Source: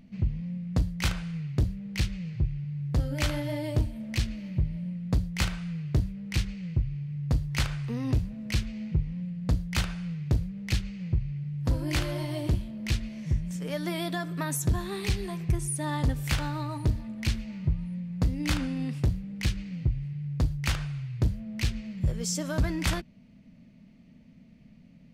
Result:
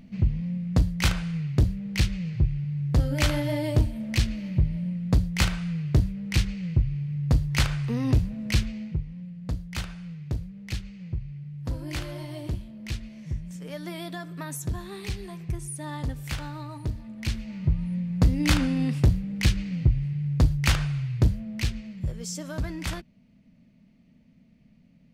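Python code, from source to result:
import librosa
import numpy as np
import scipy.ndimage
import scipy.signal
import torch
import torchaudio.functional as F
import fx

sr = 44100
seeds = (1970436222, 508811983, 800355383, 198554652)

y = fx.gain(x, sr, db=fx.line((8.63, 4.5), (9.06, -4.5), (16.94, -4.5), (17.96, 6.0), (21.12, 6.0), (22.16, -4.0)))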